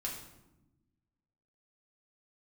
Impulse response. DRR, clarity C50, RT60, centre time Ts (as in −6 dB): −3.0 dB, 5.0 dB, 1.0 s, 35 ms